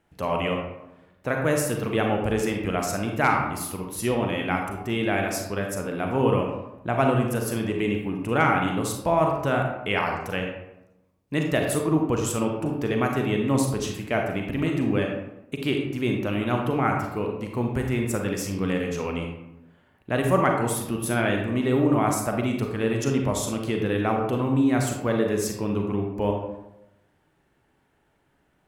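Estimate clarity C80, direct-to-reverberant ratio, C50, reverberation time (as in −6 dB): 6.0 dB, 1.5 dB, 3.5 dB, 0.90 s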